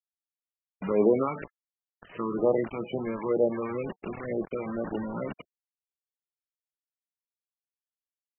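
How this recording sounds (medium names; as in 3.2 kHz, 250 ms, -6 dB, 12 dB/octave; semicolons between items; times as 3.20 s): phasing stages 12, 2.1 Hz, lowest notch 550–1800 Hz; a quantiser's noise floor 6-bit, dither none; MP3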